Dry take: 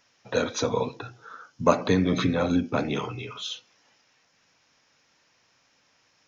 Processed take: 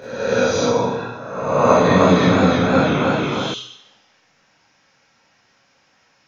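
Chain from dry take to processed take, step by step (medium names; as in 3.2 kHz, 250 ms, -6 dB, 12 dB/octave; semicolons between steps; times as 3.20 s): reverse spectral sustain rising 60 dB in 1.15 s; treble shelf 3.9 kHz -6.5 dB; reverberation RT60 0.90 s, pre-delay 18 ms, DRR -8.5 dB; 1.54–3.54 s: modulated delay 314 ms, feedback 44%, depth 63 cents, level -3 dB; trim -3.5 dB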